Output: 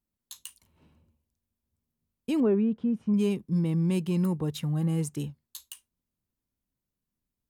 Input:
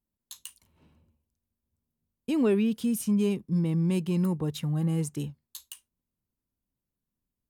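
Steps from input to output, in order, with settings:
0:02.40–0:03.14: low-pass filter 1,200 Hz 12 dB per octave

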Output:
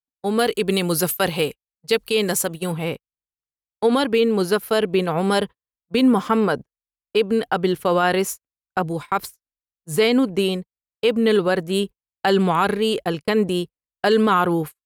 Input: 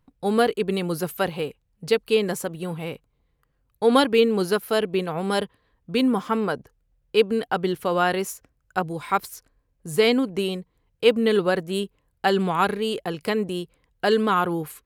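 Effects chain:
noise gate −33 dBFS, range −44 dB
0:00.39–0:02.72: high-shelf EQ 2,800 Hz +9.5 dB
automatic gain control gain up to 7 dB
brickwall limiter −8.5 dBFS, peak gain reduction 7 dB

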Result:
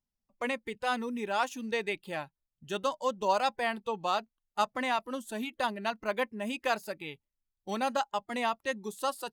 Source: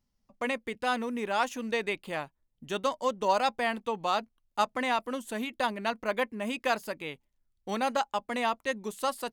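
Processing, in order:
noise reduction from a noise print of the clip's start 11 dB
level −1.5 dB

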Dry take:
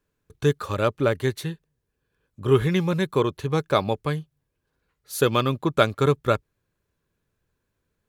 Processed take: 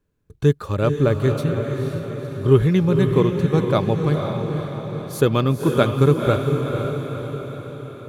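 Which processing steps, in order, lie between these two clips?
low-shelf EQ 490 Hz +10 dB
on a send: feedback delay with all-pass diffusion 496 ms, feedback 56%, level −5 dB
on the sum: level −3 dB

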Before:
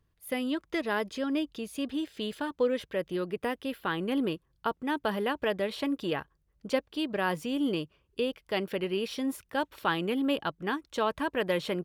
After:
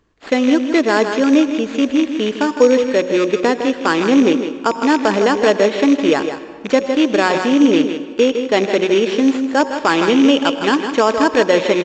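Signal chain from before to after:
loose part that buzzes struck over −39 dBFS, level −28 dBFS
hum removal 183.3 Hz, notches 6
0:10.10–0:10.83: parametric band 3,000 Hz +9.5 dB 0.2 octaves
single-tap delay 159 ms −9.5 dB
in parallel at +2 dB: sample-rate reduction 6,100 Hz, jitter 0%
on the sum: low shelf with overshoot 190 Hz −9 dB, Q 1.5
on a send at −13 dB: convolution reverb RT60 2.0 s, pre-delay 85 ms
on the sum: boost into a limiter +9.5 dB
level −1 dB
mu-law 128 kbit/s 16,000 Hz

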